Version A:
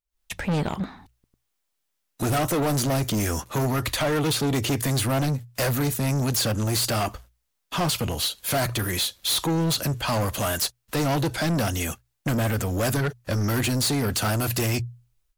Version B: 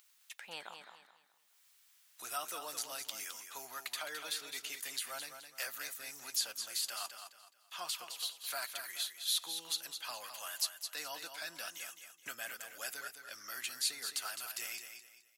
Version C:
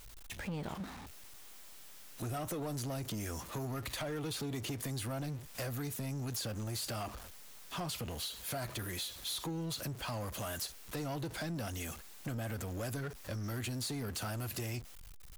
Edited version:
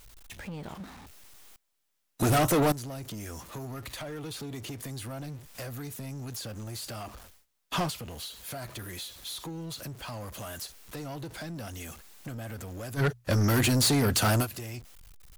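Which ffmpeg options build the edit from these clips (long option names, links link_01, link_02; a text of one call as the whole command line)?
ffmpeg -i take0.wav -i take1.wav -i take2.wav -filter_complex "[0:a]asplit=3[link_01][link_02][link_03];[2:a]asplit=4[link_04][link_05][link_06][link_07];[link_04]atrim=end=1.562[link_08];[link_01]atrim=start=1.558:end=2.722[link_09];[link_05]atrim=start=2.718:end=7.46[link_10];[link_02]atrim=start=7.22:end=7.94[link_11];[link_06]atrim=start=7.7:end=13.02[link_12];[link_03]atrim=start=12.96:end=14.47[link_13];[link_07]atrim=start=14.41[link_14];[link_08][link_09]acrossfade=duration=0.004:curve1=hsin:curve2=hsin[link_15];[link_15][link_10]acrossfade=duration=0.004:curve1=hsin:curve2=hsin[link_16];[link_16][link_11]acrossfade=duration=0.24:curve1=tri:curve2=tri[link_17];[link_17][link_12]acrossfade=duration=0.24:curve1=tri:curve2=tri[link_18];[link_18][link_13]acrossfade=duration=0.06:curve1=tri:curve2=tri[link_19];[link_19][link_14]acrossfade=duration=0.06:curve1=tri:curve2=tri" out.wav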